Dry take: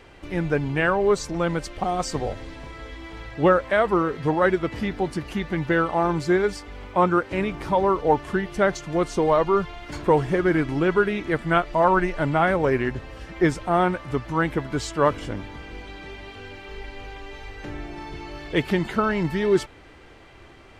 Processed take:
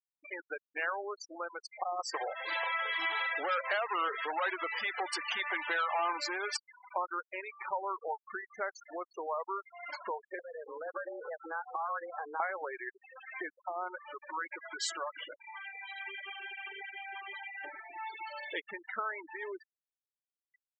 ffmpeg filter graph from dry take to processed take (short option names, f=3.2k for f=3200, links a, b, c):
-filter_complex "[0:a]asettb=1/sr,asplit=3[a][b][c];[a]atrim=end=2.144[d];[b]atrim=start=2.14:end=6.57,asetpts=PTS-STARTPTS,afade=t=in:d=0.004:c=qsin,afade=t=out:st=4.426:d=0.004:c=qsin,asplit=2[e][f];[f]highpass=f=720:p=1,volume=24dB,asoftclip=type=tanh:threshold=-6dB[g];[e][g]amix=inputs=2:normalize=0,lowpass=f=8k:p=1,volume=-6dB,tremolo=f=2:d=0.43[h];[c]atrim=start=6.566[i];[d][h]acrossfade=d=0.004:c1=hsin:c2=qsin[j];[j][i]acrossfade=d=0.004:c1=qsin:c2=hsin,asettb=1/sr,asplit=3[k][l][m];[k]atrim=end=10.394[n];[l]atrim=start=10.39:end=12.4,asetpts=PTS-STARTPTS,afade=t=in:d=0.004:c=qsin,afade=t=out:st=2.006:d=0.004:c=qsin,highshelf=f=1.6k:t=q:w=1.5:g=-10,acompressor=threshold=-29dB:ratio=16:attack=3.2:release=140:knee=1:detection=peak,afreqshift=160[o];[m]atrim=start=12.396[p];[n][o]acrossfade=d=0.004:c1=hsin:c2=qsin[q];[q][p]acrossfade=d=0.004:c1=qsin:c2=hsin,asettb=1/sr,asplit=3[r][s][t];[r]atrim=end=13.664[u];[s]atrim=start=13.66:end=15.16,asetpts=PTS-STARTPTS,afade=t=in:d=0.004:c=qsin,afade=t=out:st=1.496:d=0.004:c=qsin,highpass=f=100:p=1,acompressor=threshold=-28dB:ratio=5:attack=3.2:release=140:knee=1:detection=peak,aecho=1:1:5.5:0.54,atrim=end_sample=66150[v];[t]atrim=start=15.156[w];[u][v]acrossfade=d=0.004:c1=hsin:c2=qsin[x];[x][w]acrossfade=d=0.004:c1=qsin:c2=hsin,acompressor=threshold=-31dB:ratio=6,highpass=770,afftfilt=real='re*gte(hypot(re,im),0.02)':imag='im*gte(hypot(re,im),0.02)':win_size=1024:overlap=0.75,volume=2.5dB"